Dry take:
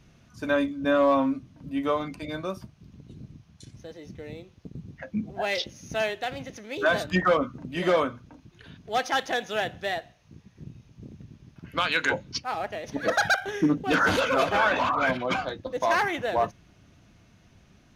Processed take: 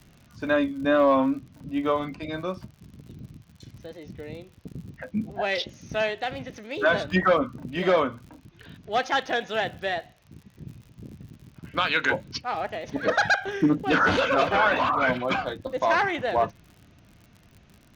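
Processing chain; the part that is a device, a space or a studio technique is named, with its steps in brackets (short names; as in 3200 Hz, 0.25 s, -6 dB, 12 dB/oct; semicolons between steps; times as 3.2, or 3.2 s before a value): lo-fi chain (LPF 4800 Hz 12 dB/oct; wow and flutter; crackle 68/s -42 dBFS); gain +1.5 dB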